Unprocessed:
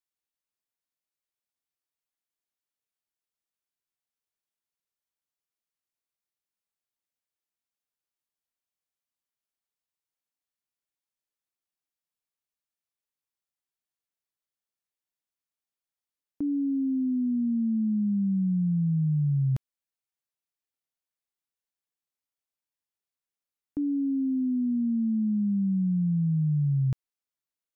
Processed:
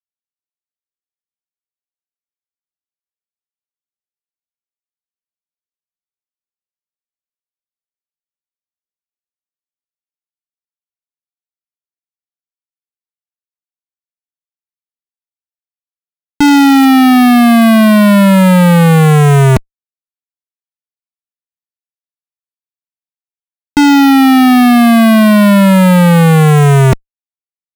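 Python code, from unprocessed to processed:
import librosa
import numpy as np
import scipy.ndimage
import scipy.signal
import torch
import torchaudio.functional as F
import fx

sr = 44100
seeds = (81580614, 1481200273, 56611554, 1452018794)

y = fx.cvsd(x, sr, bps=64000, at=(16.42, 16.86))
y = fx.dereverb_blind(y, sr, rt60_s=1.5)
y = fx.fuzz(y, sr, gain_db=63.0, gate_db=-55.0)
y = y * 10.0 ** (8.0 / 20.0)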